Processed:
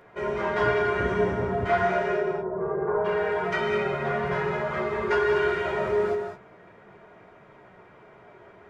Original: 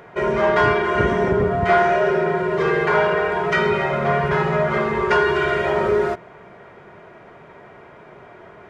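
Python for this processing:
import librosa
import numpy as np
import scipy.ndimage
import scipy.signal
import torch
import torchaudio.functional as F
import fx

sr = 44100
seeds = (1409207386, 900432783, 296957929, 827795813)

y = fx.lowpass(x, sr, hz=1100.0, slope=24, at=(2.2, 3.04), fade=0.02)
y = fx.chorus_voices(y, sr, voices=6, hz=0.6, base_ms=13, depth_ms=3.9, mix_pct=40)
y = fx.rev_gated(y, sr, seeds[0], gate_ms=230, shape='rising', drr_db=4.5)
y = y * 10.0 ** (-6.0 / 20.0)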